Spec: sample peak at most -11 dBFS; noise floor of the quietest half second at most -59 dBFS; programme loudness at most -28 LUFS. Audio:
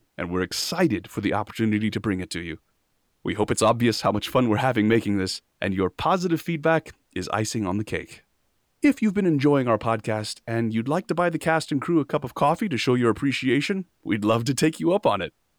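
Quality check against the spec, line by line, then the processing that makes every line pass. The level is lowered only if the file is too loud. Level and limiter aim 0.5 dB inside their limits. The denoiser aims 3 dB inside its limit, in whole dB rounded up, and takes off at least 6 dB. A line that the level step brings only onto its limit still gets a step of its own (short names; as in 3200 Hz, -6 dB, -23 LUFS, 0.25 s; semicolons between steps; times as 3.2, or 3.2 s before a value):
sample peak -9.5 dBFS: fail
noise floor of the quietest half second -70 dBFS: OK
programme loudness -24.0 LUFS: fail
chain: gain -4.5 dB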